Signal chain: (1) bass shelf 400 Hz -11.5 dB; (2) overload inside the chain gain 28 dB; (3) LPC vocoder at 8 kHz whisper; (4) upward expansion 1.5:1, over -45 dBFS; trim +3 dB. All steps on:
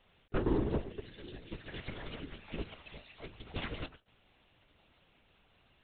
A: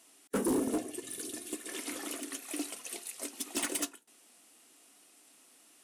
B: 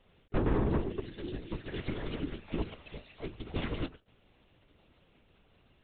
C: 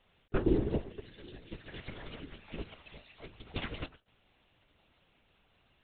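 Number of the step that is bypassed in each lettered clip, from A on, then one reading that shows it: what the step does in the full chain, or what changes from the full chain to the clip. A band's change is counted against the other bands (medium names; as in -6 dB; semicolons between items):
3, 125 Hz band -15.0 dB; 1, 4 kHz band -3.0 dB; 2, distortion -11 dB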